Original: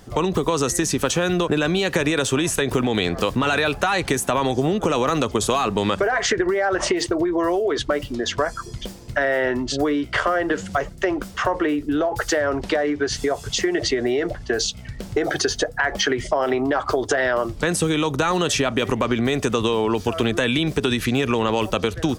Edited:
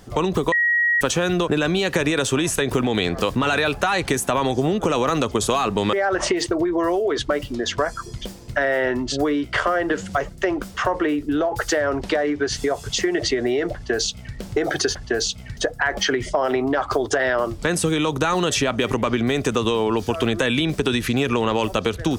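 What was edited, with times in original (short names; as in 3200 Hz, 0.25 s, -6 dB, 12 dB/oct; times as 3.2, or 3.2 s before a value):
0.52–1.01 bleep 1900 Hz -15.5 dBFS
5.93–6.53 cut
14.34–14.96 copy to 15.55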